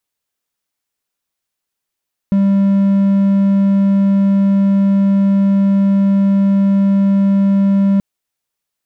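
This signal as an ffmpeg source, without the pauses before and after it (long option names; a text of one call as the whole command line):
ffmpeg -f lavfi -i "aevalsrc='0.447*(1-4*abs(mod(197*t+0.25,1)-0.5))':duration=5.68:sample_rate=44100" out.wav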